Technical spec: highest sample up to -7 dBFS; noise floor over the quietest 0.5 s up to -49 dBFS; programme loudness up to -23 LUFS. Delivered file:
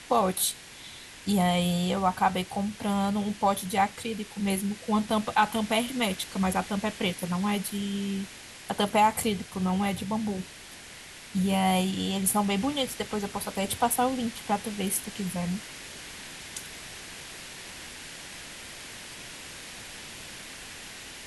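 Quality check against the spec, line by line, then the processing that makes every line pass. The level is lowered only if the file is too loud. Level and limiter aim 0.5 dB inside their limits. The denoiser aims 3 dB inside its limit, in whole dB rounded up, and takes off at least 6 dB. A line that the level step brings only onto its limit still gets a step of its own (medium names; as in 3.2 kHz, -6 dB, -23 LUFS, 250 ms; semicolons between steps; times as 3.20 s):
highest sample -10.5 dBFS: pass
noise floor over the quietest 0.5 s -46 dBFS: fail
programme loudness -28.0 LUFS: pass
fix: noise reduction 6 dB, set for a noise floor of -46 dBFS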